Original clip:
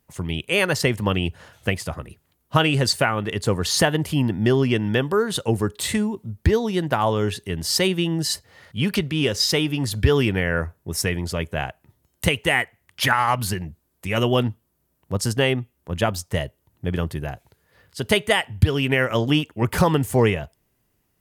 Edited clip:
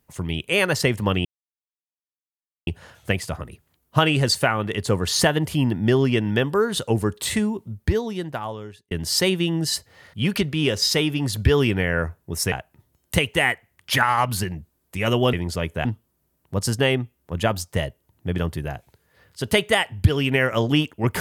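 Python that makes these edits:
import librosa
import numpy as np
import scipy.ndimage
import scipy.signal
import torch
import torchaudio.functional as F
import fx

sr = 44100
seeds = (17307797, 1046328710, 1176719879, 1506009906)

y = fx.edit(x, sr, fx.insert_silence(at_s=1.25, length_s=1.42),
    fx.fade_out_span(start_s=6.08, length_s=1.41),
    fx.move(start_s=11.1, length_s=0.52, to_s=14.43), tone=tone)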